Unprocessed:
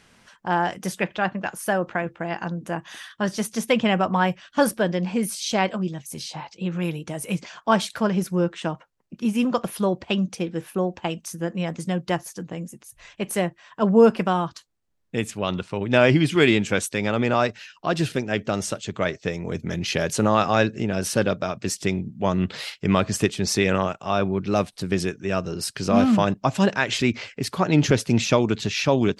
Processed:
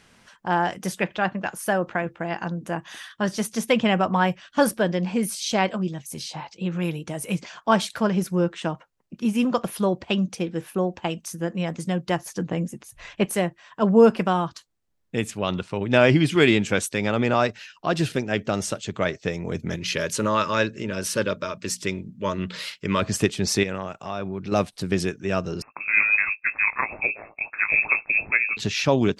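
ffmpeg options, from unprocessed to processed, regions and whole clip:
-filter_complex "[0:a]asettb=1/sr,asplit=3[a][b][c];[a]atrim=end=12.274[d];[b]atrim=start=12.27:end=13.26,asetpts=PTS-STARTPTS,afade=t=in:d=0.004:c=qsin,afade=t=out:st=0.986:d=0.004:c=qsin,highshelf=f=5.8k:g=-9.5,acontrast=63[e];[c]atrim=start=13.256[f];[d][e]acrossfade=d=0.004:c1=hsin:c2=qsin[g];[g][f]acrossfade=d=0.004:c1=qsin:c2=hsin,asettb=1/sr,asplit=3[h][i][j];[h]atrim=end=19.764[k];[i]atrim=start=19.76:end=23.02,asetpts=PTS-STARTPTS,afade=t=in:d=0.004:c=qsin,afade=t=out:st=3.256:d=0.004:c=qsin,asuperstop=centerf=750:order=12:qfactor=3.5,lowshelf=f=400:g=-6,bandreject=f=60:t=h:w=6,bandreject=f=120:t=h:w=6,bandreject=f=180:t=h:w=6,bandreject=f=240:t=h:w=6[l];[j]atrim=start=23.016[m];[k][l]acrossfade=d=0.004:c1=hsin:c2=qsin[n];[n][m]acrossfade=d=0.004:c1=qsin:c2=hsin,asettb=1/sr,asplit=3[o][p][q];[o]atrim=end=23.634[r];[p]atrim=start=23.63:end=24.52,asetpts=PTS-STARTPTS,afade=t=in:d=0.004:c=qsin,afade=t=out:st=0.886:d=0.004:c=qsin,bandreject=f=3.1k:w=20,acompressor=threshold=-31dB:ratio=2:attack=3.2:release=140:knee=1:detection=peak[s];[q]atrim=start=24.516[t];[r][s]acrossfade=d=0.004:c1=hsin:c2=qsin[u];[u][t]acrossfade=d=0.004:c1=qsin:c2=hsin,asettb=1/sr,asplit=3[v][w][x];[v]atrim=end=25.624[y];[w]atrim=start=25.62:end=28.57,asetpts=PTS-STARTPTS,afade=t=in:d=0.004:c=qsin,afade=t=out:st=2.946:d=0.004:c=qsin,aeval=exprs='val(0)*sin(2*PI*53*n/s)':c=same,asplit=2[z][aa];[aa]adelay=18,volume=-12dB[ab];[z][ab]amix=inputs=2:normalize=0,atrim=end_sample=130095,lowpass=f=2.3k:t=q:w=0.5098,lowpass=f=2.3k:t=q:w=0.6013,lowpass=f=2.3k:t=q:w=0.9,lowpass=f=2.3k:t=q:w=2.563,afreqshift=-2700[ac];[x]atrim=start=28.566[ad];[y][ac]acrossfade=d=0.004:c1=hsin:c2=qsin[ae];[ae][ad]acrossfade=d=0.004:c1=qsin:c2=hsin"

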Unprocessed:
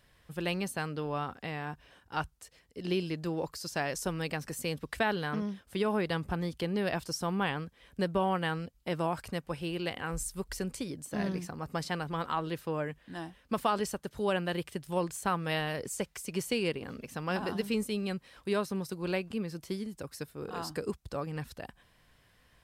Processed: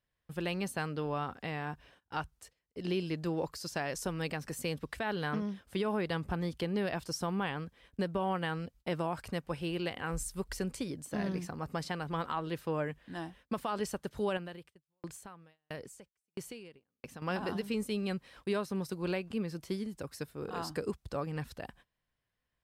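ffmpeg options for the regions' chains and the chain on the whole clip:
-filter_complex "[0:a]asettb=1/sr,asplit=3[a][b][c];[a]atrim=end=14.374[d];[b]atrim=start=14.37:end=17.22,asetpts=PTS-STARTPTS,afade=t=in:d=0.004:c=qsin,afade=t=out:st=2.846:d=0.004:c=qsin,acompressor=threshold=-36dB:ratio=2.5:attack=3.2:release=140:knee=1:detection=peak,aeval=exprs='val(0)*pow(10,-31*if(lt(mod(1.5*n/s,1),2*abs(1.5)/1000),1-mod(1.5*n/s,1)/(2*abs(1.5)/1000),(mod(1.5*n/s,1)-2*abs(1.5)/1000)/(1-2*abs(1.5)/1000))/20)':c=same[e];[c]atrim=start=17.216[f];[d][e]acrossfade=d=0.004:c1=hsin:c2=qsin[g];[g][f]acrossfade=d=0.004:c1=qsin:c2=hsin,highshelf=f=5.2k:g=-3.5,alimiter=limit=-23.5dB:level=0:latency=1:release=220,agate=range=-21dB:threshold=-57dB:ratio=16:detection=peak"

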